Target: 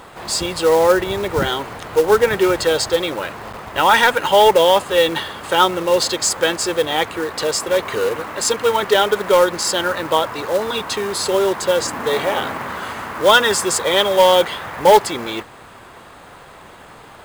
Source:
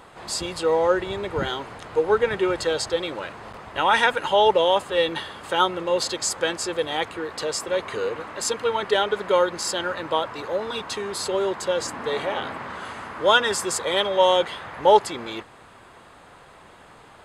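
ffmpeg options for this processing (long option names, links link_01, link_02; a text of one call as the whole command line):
ffmpeg -i in.wav -af "acontrast=87,acrusher=bits=4:mode=log:mix=0:aa=0.000001" out.wav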